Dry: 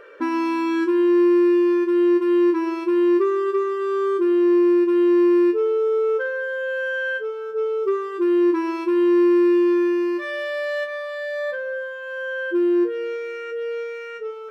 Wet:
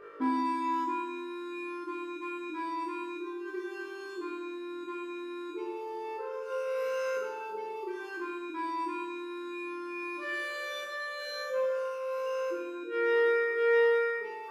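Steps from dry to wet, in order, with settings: compressor, threshold -25 dBFS, peak gain reduction 10.5 dB; formant shift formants -2 st; flutter echo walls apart 3.3 m, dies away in 0.86 s; gain -6.5 dB

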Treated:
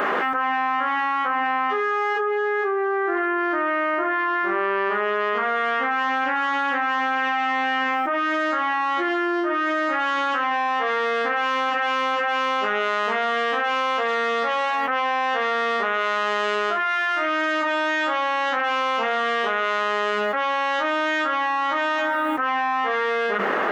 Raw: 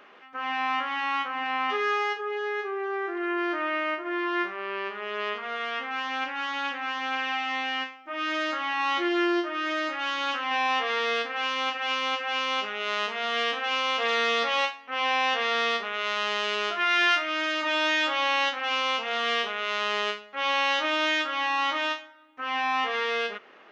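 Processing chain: band shelf 3800 Hz -10 dB; notches 50/100/150/200/250/300/350 Hz; fast leveller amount 100%

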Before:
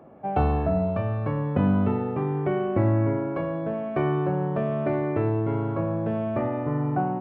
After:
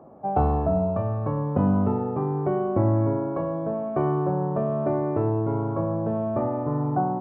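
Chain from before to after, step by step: resonant high shelf 1500 Hz -11 dB, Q 1.5

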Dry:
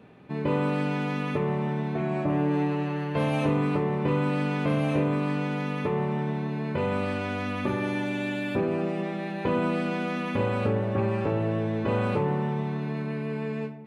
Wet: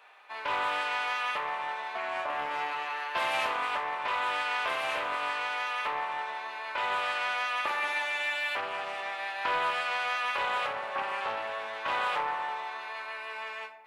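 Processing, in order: HPF 830 Hz 24 dB/oct; Doppler distortion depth 0.17 ms; gain +5.5 dB

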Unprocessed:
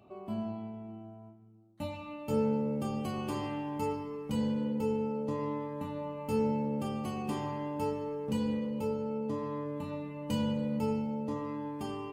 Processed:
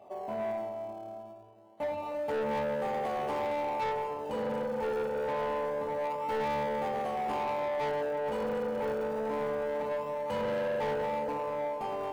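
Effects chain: tone controls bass -13 dB, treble -8 dB; echo with dull and thin repeats by turns 0.114 s, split 830 Hz, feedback 79%, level -6 dB; in parallel at -10 dB: decimation with a swept rate 31×, swing 100% 0.26 Hz; on the sum: band shelf 680 Hz +11.5 dB 1.3 oct; soft clip -28.5 dBFS, distortion -10 dB

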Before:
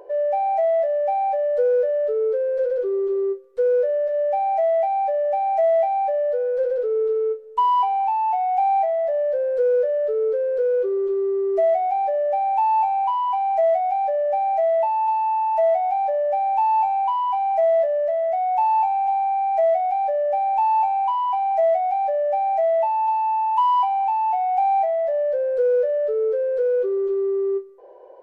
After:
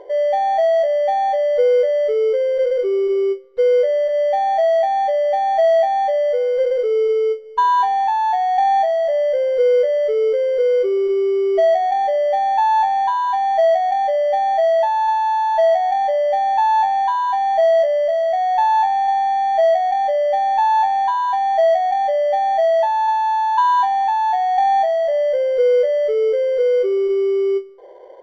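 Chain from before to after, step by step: in parallel at -11 dB: sample-and-hold 17×; on the sum: air absorption 200 m; gain +3 dB

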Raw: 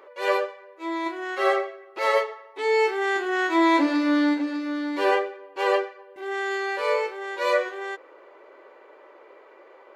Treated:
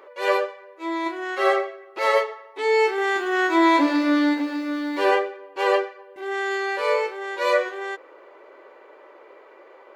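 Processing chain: 2.87–5.06 lo-fi delay 0.108 s, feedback 55%, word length 8-bit, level -14 dB; gain +2 dB

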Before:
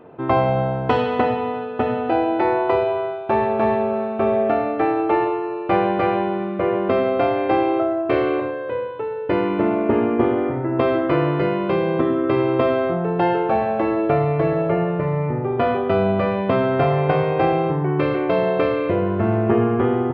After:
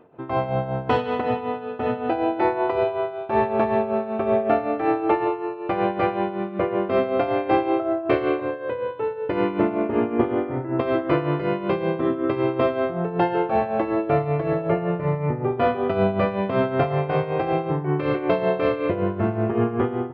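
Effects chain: AGC; tremolo 5.3 Hz, depth 65%; gain -5.5 dB

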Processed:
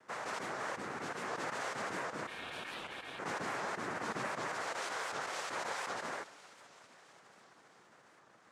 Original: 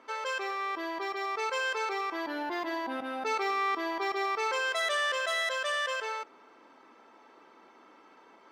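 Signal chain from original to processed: limiter -25 dBFS, peak gain reduction 4.5 dB; thin delay 0.334 s, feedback 74%, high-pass 1900 Hz, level -14 dB; noise vocoder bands 3; 2.27–3.19 ring modulator 2000 Hz; HPF 200 Hz 6 dB/oct; high shelf 2900 Hz -9.5 dB; record warp 78 rpm, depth 160 cents; gain -4 dB

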